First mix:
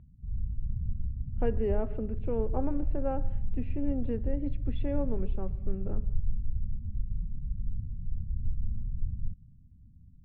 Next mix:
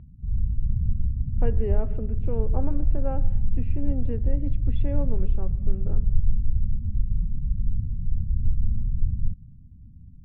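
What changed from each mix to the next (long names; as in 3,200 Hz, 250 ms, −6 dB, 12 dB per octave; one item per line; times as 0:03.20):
background +8.5 dB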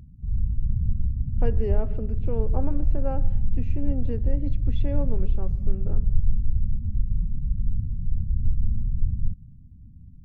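speech: add high-shelf EQ 2,300 Hz −7.5 dB
master: remove high-frequency loss of the air 460 metres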